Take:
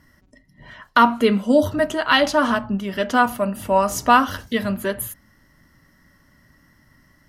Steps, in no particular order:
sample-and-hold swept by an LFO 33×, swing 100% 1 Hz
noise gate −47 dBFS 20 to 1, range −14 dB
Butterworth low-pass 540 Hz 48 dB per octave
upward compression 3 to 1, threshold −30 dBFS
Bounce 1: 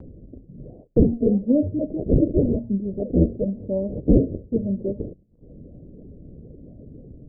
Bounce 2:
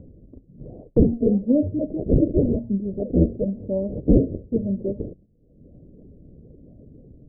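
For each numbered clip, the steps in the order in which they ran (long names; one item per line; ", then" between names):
sample-and-hold swept by an LFO, then upward compression, then Butterworth low-pass, then noise gate
sample-and-hold swept by an LFO, then noise gate, then Butterworth low-pass, then upward compression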